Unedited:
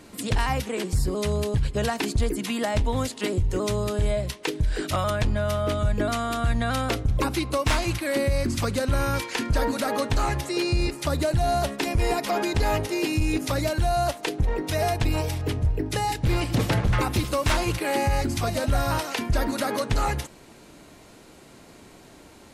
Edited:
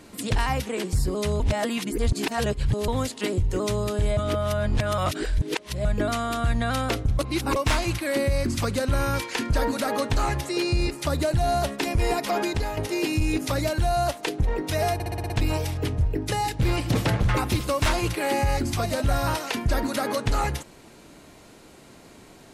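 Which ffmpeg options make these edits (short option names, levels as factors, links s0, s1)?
-filter_complex "[0:a]asplit=14[s0][s1][s2][s3][s4][s5][s6][s7][s8][s9][s10][s11][s12][s13];[s0]atrim=end=1.402[s14];[s1]atrim=start=1.398:end=2.882,asetpts=PTS-STARTPTS,areverse[s15];[s2]atrim=start=2.878:end=4.172[s16];[s3]atrim=start=4.168:end=5.852,asetpts=PTS-STARTPTS,areverse[s17];[s4]atrim=start=5.848:end=7.192[s18];[s5]atrim=start=7.188:end=7.562,asetpts=PTS-STARTPTS,areverse[s19];[s6]atrim=start=7.558:end=12.77,asetpts=PTS-STARTPTS,afade=t=out:st=4.902:d=0.31:silence=0.281838[s20];[s7]atrim=start=12.77:end=15.002,asetpts=PTS-STARTPTS,afade=t=in:d=0.004:c=hsin:silence=0.281838[s21];[s8]atrim=start=14.938:end=15.002[s22];[s9]atrim=start=14.938:end=15.002[s23];[s10]atrim=start=14.938:end=15.002[s24];[s11]atrim=start=14.938:end=15.002[s25];[s12]atrim=start=14.938:end=15.002[s26];[s13]atrim=start=14.938[s27];[s14][s15]acrossfade=d=0.004:c1=hsin:c2=hsin[s28];[s28][s16]acrossfade=d=0.004:c1=hsin:c2=hsin[s29];[s29][s17]acrossfade=d=0.004:c1=hsin:c2=hsin[s30];[s30][s18]acrossfade=d=0.004:c1=hsin:c2=hsin[s31];[s31][s19]acrossfade=d=0.004:c1=hsin:c2=hsin[s32];[s20][s21]concat=n=2:v=0:a=1[s33];[s32][s33]acrossfade=d=0.004:c1=hsin:c2=hsin[s34];[s34][s22]acrossfade=d=0.004:c1=hsin:c2=hsin[s35];[s35][s23]acrossfade=d=0.004:c1=hsin:c2=hsin[s36];[s36][s24]acrossfade=d=0.004:c1=hsin:c2=hsin[s37];[s37][s25]acrossfade=d=0.004:c1=hsin:c2=hsin[s38];[s38][s26]acrossfade=d=0.004:c1=hsin:c2=hsin[s39];[s39][s27]acrossfade=d=0.004:c1=hsin:c2=hsin"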